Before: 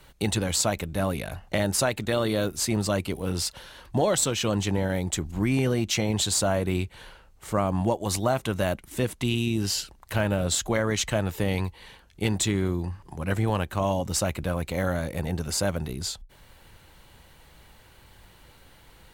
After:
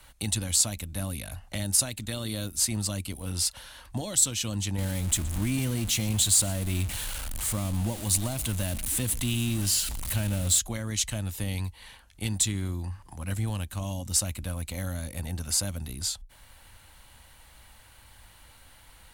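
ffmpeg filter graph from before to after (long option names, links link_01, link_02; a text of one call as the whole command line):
ffmpeg -i in.wav -filter_complex "[0:a]asettb=1/sr,asplit=3[link_01][link_02][link_03];[link_01]atrim=end=4.784[link_04];[link_02]atrim=start=4.78:end=10.59,asetpts=PTS-STARTPTS,afade=type=in:duration=0.004:curve=qsin,afade=type=out:start_time=5.806:duration=0.004:curve=qsin,aeval=exprs='val(0)+0.5*0.0473*sgn(val(0))':channel_layout=same,equalizer=frequency=5300:width_type=o:width=0.59:gain=-5,aecho=1:1:120:0.0841,atrim=end_sample=256221[link_05];[link_03]atrim=start=10.586[link_06];[link_04][link_05]acrossfade=duration=0.004:curve1=hsin:curve2=qsin[link_07];[link_07][link_06]acrossfade=duration=0.004:curve1=qsin:curve2=hsin,equalizer=frequency=160:width_type=o:width=0.67:gain=-9,equalizer=frequency=400:width_type=o:width=0.67:gain=-12,equalizer=frequency=10000:width_type=o:width=0.67:gain=7,acrossover=split=360|3000[link_08][link_09][link_10];[link_09]acompressor=threshold=-47dB:ratio=3[link_11];[link_08][link_11][link_10]amix=inputs=3:normalize=0" out.wav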